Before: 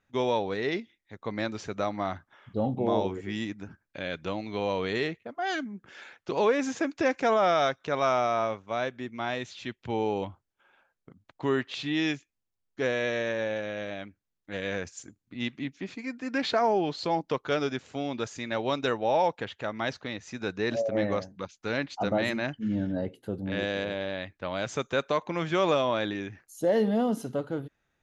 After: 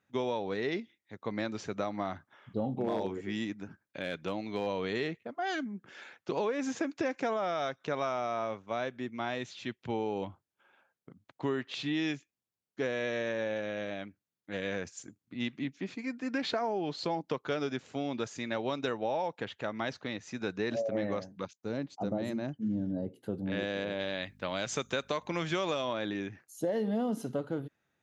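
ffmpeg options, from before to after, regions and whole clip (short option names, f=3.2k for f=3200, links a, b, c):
-filter_complex "[0:a]asettb=1/sr,asplit=3[a][b][c];[a]atrim=end=2.734[d];[b]atrim=start=2.73:end=4.67,asetpts=PTS-STARTPTS,afade=t=in:d=0.004:c=qsin,afade=t=out:st=1.936:d=0.004:c=qsin,lowshelf=f=98:g=-4.5,asoftclip=type=hard:threshold=-20dB[e];[c]atrim=start=4.666[f];[d][e]acrossfade=d=0.004:c1=hsin:c2=qsin[g];[g][f]acrossfade=d=0.004:c1=qsin:c2=hsin,asettb=1/sr,asplit=3[h][i][j];[h]atrim=end=21.534[k];[i]atrim=start=21.53:end=23.16,asetpts=PTS-STARTPTS,afade=t=in:d=0.004:c=qsin,afade=t=out:st=1.626:d=0.004:c=qsin,equalizer=f=2.2k:t=o:w=2.5:g=-14.5,agate=range=-12dB:threshold=-54dB:ratio=16:release=100:detection=peak[l];[j]atrim=start=23.156[m];[k][l]acrossfade=d=0.004:c1=hsin:c2=qsin[n];[n][m]acrossfade=d=0.004:c1=qsin:c2=hsin,asettb=1/sr,asplit=3[o][p][q];[o]atrim=end=23.994[r];[p]atrim=start=23.99:end=25.93,asetpts=PTS-STARTPTS,afade=t=in:d=0.004:c=qsin,afade=t=out:st=1.936:d=0.004:c=qsin,highshelf=f=2.5k:g=9.5,aeval=exprs='val(0)+0.00224*(sin(2*PI*50*n/s)+sin(2*PI*2*50*n/s)/2+sin(2*PI*3*50*n/s)/3+sin(2*PI*4*50*n/s)/4+sin(2*PI*5*50*n/s)/5)':c=same[s];[q]atrim=start=25.926[t];[r][s]acrossfade=d=0.004:c1=hsin:c2=qsin[u];[u][t]acrossfade=d=0.004:c1=qsin:c2=hsin,acompressor=threshold=-27dB:ratio=6,highpass=120,lowshelf=f=340:g=3.5,volume=-2.5dB"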